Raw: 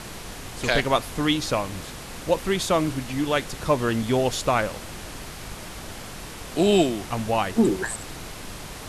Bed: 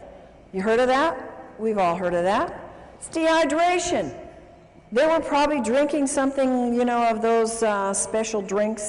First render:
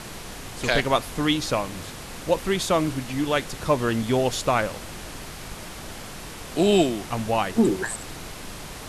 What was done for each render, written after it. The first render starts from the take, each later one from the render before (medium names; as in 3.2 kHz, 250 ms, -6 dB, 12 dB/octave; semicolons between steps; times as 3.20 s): de-hum 50 Hz, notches 2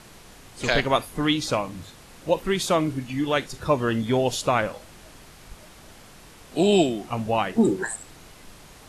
noise print and reduce 10 dB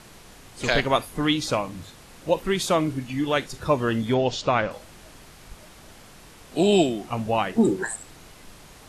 4.14–4.71 s: low-pass 5.8 kHz 24 dB/octave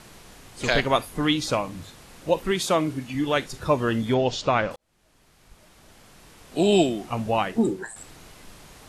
2.51–3.15 s: bass shelf 69 Hz -12 dB; 4.76–6.78 s: fade in; 7.42–7.96 s: fade out, to -10.5 dB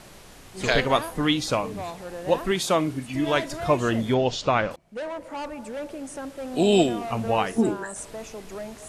add bed -13.5 dB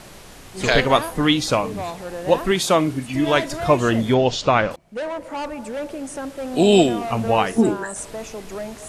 trim +5 dB; peak limiter -2 dBFS, peak gain reduction 2 dB